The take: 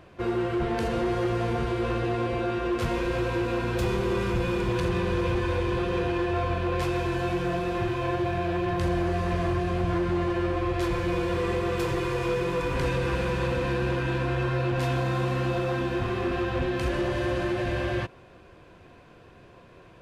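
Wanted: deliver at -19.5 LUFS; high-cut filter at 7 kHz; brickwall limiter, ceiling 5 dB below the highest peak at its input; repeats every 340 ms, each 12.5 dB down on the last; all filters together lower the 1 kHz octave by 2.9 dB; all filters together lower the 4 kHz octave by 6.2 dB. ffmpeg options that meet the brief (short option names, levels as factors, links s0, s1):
-af "lowpass=7000,equalizer=f=1000:t=o:g=-3.5,equalizer=f=4000:t=o:g=-8,alimiter=limit=0.0794:level=0:latency=1,aecho=1:1:340|680|1020:0.237|0.0569|0.0137,volume=3.16"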